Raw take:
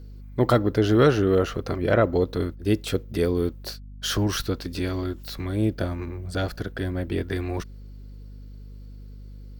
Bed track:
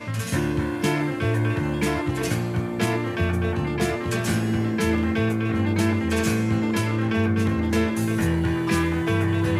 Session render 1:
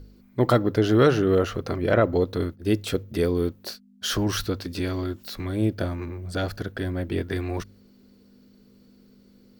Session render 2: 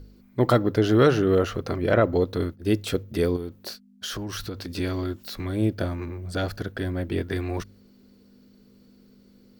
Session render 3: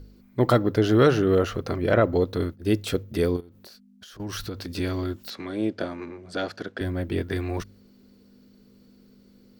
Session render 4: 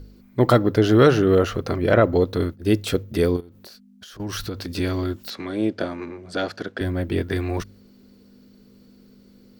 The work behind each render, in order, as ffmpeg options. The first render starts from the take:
-af "bandreject=f=50:t=h:w=4,bandreject=f=100:t=h:w=4,bandreject=f=150:t=h:w=4"
-filter_complex "[0:a]asettb=1/sr,asplit=3[a][b][c];[a]atrim=end=3.364[d];[b]atrim=start=3.36:end=4.74,asetpts=PTS-STARTPTS,afade=t=in:d=0.004:c=qsin,afade=t=out:st=1.376:d=0.004:c=qsin,acompressor=threshold=-29dB:ratio=5:attack=3.2:release=140:knee=1:detection=peak[e];[c]atrim=start=4.736[f];[d][e]acrossfade=d=0.004:c1=hsin:c2=qsin[g];[g][f]acrossfade=d=0.004:c1=qsin:c2=hsin"
-filter_complex "[0:a]asettb=1/sr,asplit=3[a][b][c];[a]atrim=end=3.404[d];[b]atrim=start=3.4:end=4.2,asetpts=PTS-STARTPTS,afade=t=in:d=0.004:c=qsin,afade=t=out:st=0.796:d=0.004:c=qsin,acompressor=threshold=-43dB:ratio=16:attack=3.2:release=140:knee=1:detection=peak[e];[c]atrim=start=4.196[f];[d][e]acrossfade=d=0.004:c1=hsin:c2=qsin[g];[g][f]acrossfade=d=0.004:c1=qsin:c2=hsin,asettb=1/sr,asplit=3[h][i][j];[h]atrim=end=5.304[k];[i]atrim=start=5.3:end=6.81,asetpts=PTS-STARTPTS,afade=t=in:d=0.004:c=qsin,afade=t=out:st=1.506:d=0.004:c=qsin,highpass=230,lowpass=6.6k[l];[j]atrim=start=6.806[m];[k][l]acrossfade=d=0.004:c1=hsin:c2=qsin[n];[n][m]acrossfade=d=0.004:c1=qsin:c2=hsin"
-af "volume=3.5dB"

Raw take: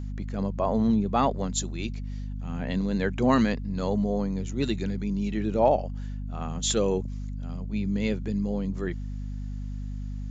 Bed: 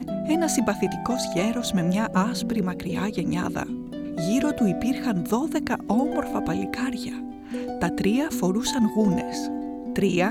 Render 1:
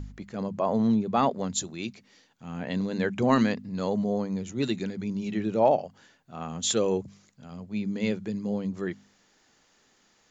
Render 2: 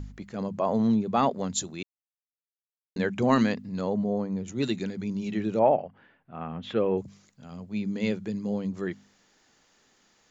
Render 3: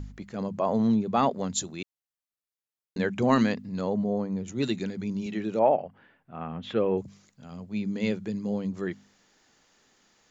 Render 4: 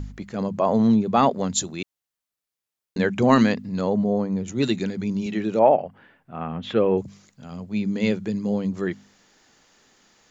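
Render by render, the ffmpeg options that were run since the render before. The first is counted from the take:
-af "bandreject=f=50:t=h:w=4,bandreject=f=100:t=h:w=4,bandreject=f=150:t=h:w=4,bandreject=f=200:t=h:w=4,bandreject=f=250:t=h:w=4"
-filter_complex "[0:a]asettb=1/sr,asplit=3[a][b][c];[a]atrim=end=3.814[d];[b]atrim=start=3.81:end=4.48,asetpts=PTS-STARTPTS,afade=t=in:d=0.004:c=qsin,afade=t=out:st=0.666:d=0.004:c=qsin,highshelf=f=2.4k:g=-11[e];[c]atrim=start=4.476[f];[d][e]acrossfade=d=0.004:c1=hsin:c2=qsin[g];[g][f]acrossfade=d=0.004:c1=qsin:c2=hsin,asettb=1/sr,asplit=3[h][i][j];[h]atrim=end=5.594[k];[i]atrim=start=5.59:end=6.98,asetpts=PTS-STARTPTS,afade=t=in:d=0.004:c=qsin,afade=t=out:st=1.386:d=0.004:c=qsin,lowpass=f=2.6k:w=0.5412,lowpass=f=2.6k:w=1.3066[l];[j]atrim=start=6.976[m];[k][l]acrossfade=d=0.004:c1=hsin:c2=qsin[n];[n][m]acrossfade=d=0.004:c1=qsin:c2=hsin,asplit=3[o][p][q];[o]atrim=end=1.83,asetpts=PTS-STARTPTS,afade=t=out:st=1.826:d=0.004:c=hsin[r];[p]atrim=start=1.83:end=2.96,asetpts=PTS-STARTPTS,volume=0[s];[q]atrim=start=2.96,asetpts=PTS-STARTPTS,afade=t=in:d=0.004:c=hsin[t];[r][s][t]concat=n=3:v=0:a=1"
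-filter_complex "[0:a]asettb=1/sr,asplit=3[a][b][c];[a]atrim=end=5.264[d];[b]atrim=start=5.26:end=5.8,asetpts=PTS-STARTPTS,afade=t=in:d=0.004:c=qsin,afade=t=out:st=0.536:d=0.004:c=qsin,highpass=f=200:p=1[e];[c]atrim=start=5.796[f];[d][e]acrossfade=d=0.004:c1=hsin:c2=qsin[g];[g][f]acrossfade=d=0.004:c1=qsin:c2=hsin"
-af "volume=5.5dB"

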